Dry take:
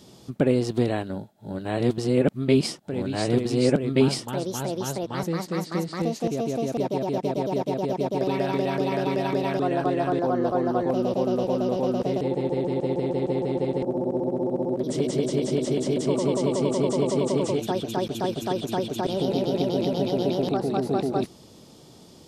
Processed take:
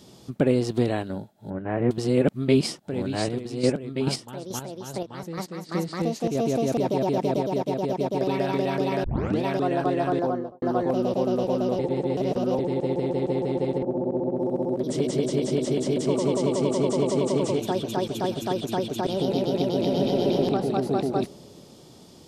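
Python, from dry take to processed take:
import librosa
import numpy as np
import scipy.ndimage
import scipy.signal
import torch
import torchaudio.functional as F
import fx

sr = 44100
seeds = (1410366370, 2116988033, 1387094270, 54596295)

y = fx.steep_lowpass(x, sr, hz=2300.0, slope=36, at=(1.5, 1.91))
y = fx.chopper(y, sr, hz=2.3, depth_pct=60, duty_pct=20, at=(3.2, 5.69))
y = fx.env_flatten(y, sr, amount_pct=70, at=(6.35, 7.41))
y = fx.studio_fade_out(y, sr, start_s=10.19, length_s=0.43)
y = fx.lowpass(y, sr, hz=1600.0, slope=6, at=(13.77, 14.38), fade=0.02)
y = fx.echo_single(y, sr, ms=624, db=-17.0, at=(15.38, 18.55))
y = fx.reverb_throw(y, sr, start_s=19.75, length_s=0.6, rt60_s=2.7, drr_db=3.0)
y = fx.edit(y, sr, fx.tape_start(start_s=9.04, length_s=0.4),
    fx.reverse_span(start_s=11.79, length_s=0.8), tone=tone)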